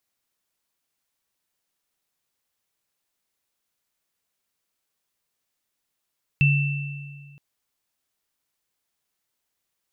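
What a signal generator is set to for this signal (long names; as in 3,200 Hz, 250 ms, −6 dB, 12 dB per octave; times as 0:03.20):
inharmonic partials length 0.97 s, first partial 142 Hz, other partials 2,670 Hz, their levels −4 dB, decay 1.81 s, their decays 1.57 s, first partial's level −14.5 dB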